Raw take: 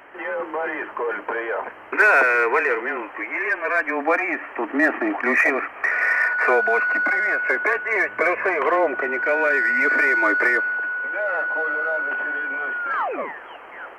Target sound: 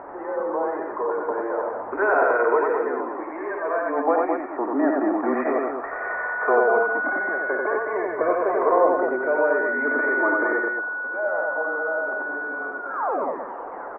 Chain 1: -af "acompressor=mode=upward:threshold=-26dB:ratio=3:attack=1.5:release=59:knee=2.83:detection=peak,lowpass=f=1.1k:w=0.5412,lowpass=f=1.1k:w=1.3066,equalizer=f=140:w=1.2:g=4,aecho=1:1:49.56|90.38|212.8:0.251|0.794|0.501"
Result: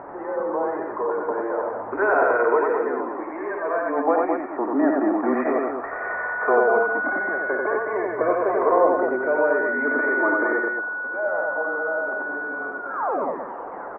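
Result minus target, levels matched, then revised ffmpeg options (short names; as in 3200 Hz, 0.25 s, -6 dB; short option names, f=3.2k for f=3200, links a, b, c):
125 Hz band +5.0 dB
-af "acompressor=mode=upward:threshold=-26dB:ratio=3:attack=1.5:release=59:knee=2.83:detection=peak,lowpass=f=1.1k:w=0.5412,lowpass=f=1.1k:w=1.3066,equalizer=f=140:w=1.2:g=-4,aecho=1:1:49.56|90.38|212.8:0.251|0.794|0.501"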